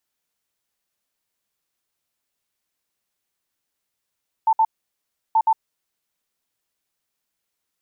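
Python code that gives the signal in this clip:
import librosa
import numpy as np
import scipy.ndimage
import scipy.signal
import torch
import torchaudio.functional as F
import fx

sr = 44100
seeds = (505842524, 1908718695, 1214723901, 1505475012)

y = fx.beep_pattern(sr, wave='sine', hz=889.0, on_s=0.06, off_s=0.06, beeps=2, pause_s=0.7, groups=2, level_db=-13.0)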